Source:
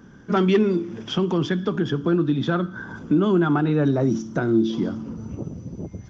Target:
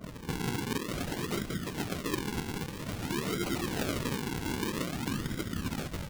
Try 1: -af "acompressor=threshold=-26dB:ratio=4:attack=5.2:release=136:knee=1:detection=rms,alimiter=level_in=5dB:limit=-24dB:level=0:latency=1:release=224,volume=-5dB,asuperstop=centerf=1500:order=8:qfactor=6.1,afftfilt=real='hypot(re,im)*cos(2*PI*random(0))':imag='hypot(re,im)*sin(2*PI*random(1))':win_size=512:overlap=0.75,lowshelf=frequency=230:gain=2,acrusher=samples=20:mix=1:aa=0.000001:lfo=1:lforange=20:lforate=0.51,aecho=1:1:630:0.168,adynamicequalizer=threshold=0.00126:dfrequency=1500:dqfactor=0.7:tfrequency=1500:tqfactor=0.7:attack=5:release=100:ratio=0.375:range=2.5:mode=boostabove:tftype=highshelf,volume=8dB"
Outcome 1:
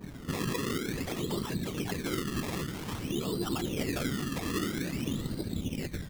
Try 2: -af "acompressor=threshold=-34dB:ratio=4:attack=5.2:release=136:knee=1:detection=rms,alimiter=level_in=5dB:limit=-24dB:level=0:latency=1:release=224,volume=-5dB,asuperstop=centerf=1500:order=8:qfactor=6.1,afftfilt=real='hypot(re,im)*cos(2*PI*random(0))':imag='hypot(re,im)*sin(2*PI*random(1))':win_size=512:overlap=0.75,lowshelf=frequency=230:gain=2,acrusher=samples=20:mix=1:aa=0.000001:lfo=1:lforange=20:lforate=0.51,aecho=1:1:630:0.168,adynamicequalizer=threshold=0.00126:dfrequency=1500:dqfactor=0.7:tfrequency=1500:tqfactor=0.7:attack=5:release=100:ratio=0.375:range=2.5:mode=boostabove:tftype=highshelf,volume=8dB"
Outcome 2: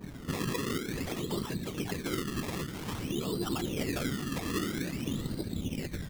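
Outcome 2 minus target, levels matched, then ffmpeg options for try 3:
sample-and-hold swept by an LFO: distortion −9 dB
-af "acompressor=threshold=-34dB:ratio=4:attack=5.2:release=136:knee=1:detection=rms,alimiter=level_in=5dB:limit=-24dB:level=0:latency=1:release=224,volume=-5dB,asuperstop=centerf=1500:order=8:qfactor=6.1,afftfilt=real='hypot(re,im)*cos(2*PI*random(0))':imag='hypot(re,im)*sin(2*PI*random(1))':win_size=512:overlap=0.75,lowshelf=frequency=230:gain=2,acrusher=samples=49:mix=1:aa=0.000001:lfo=1:lforange=49:lforate=0.51,aecho=1:1:630:0.168,adynamicequalizer=threshold=0.00126:dfrequency=1500:dqfactor=0.7:tfrequency=1500:tqfactor=0.7:attack=5:release=100:ratio=0.375:range=2.5:mode=boostabove:tftype=highshelf,volume=8dB"

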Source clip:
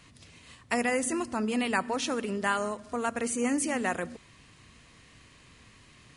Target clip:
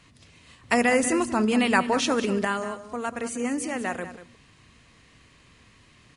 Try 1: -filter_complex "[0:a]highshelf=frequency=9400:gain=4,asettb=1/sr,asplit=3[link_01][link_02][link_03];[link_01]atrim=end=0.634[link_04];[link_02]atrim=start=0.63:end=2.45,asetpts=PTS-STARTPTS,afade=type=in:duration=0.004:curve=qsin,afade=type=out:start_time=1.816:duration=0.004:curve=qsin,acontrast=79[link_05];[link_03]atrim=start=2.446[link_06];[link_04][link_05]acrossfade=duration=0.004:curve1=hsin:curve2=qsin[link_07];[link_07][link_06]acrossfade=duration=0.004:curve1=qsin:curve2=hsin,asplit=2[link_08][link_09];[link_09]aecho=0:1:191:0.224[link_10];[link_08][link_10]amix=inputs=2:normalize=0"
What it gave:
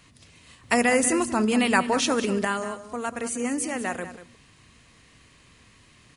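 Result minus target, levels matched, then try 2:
8,000 Hz band +3.5 dB
-filter_complex "[0:a]highshelf=frequency=9400:gain=-6.5,asettb=1/sr,asplit=3[link_01][link_02][link_03];[link_01]atrim=end=0.634[link_04];[link_02]atrim=start=0.63:end=2.45,asetpts=PTS-STARTPTS,afade=type=in:duration=0.004:curve=qsin,afade=type=out:start_time=1.816:duration=0.004:curve=qsin,acontrast=79[link_05];[link_03]atrim=start=2.446[link_06];[link_04][link_05]acrossfade=duration=0.004:curve1=hsin:curve2=qsin[link_07];[link_07][link_06]acrossfade=duration=0.004:curve1=qsin:curve2=hsin,asplit=2[link_08][link_09];[link_09]aecho=0:1:191:0.224[link_10];[link_08][link_10]amix=inputs=2:normalize=0"

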